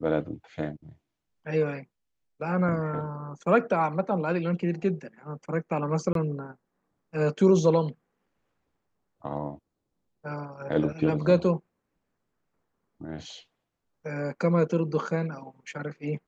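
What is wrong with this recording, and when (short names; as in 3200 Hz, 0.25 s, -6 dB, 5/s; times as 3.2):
6.13–6.15 gap 22 ms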